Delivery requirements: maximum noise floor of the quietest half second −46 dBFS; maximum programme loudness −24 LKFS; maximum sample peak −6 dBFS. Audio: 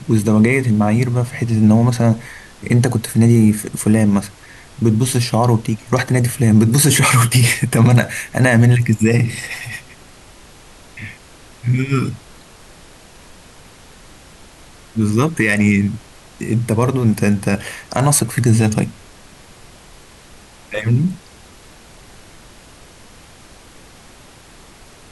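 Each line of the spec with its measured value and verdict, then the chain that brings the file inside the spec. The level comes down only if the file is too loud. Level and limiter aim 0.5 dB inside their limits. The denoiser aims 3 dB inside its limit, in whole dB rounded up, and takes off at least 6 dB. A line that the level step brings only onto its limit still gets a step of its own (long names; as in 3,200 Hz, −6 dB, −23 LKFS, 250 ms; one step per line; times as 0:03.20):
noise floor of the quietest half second −43 dBFS: out of spec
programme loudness −15.5 LKFS: out of spec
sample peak −2.5 dBFS: out of spec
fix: level −9 dB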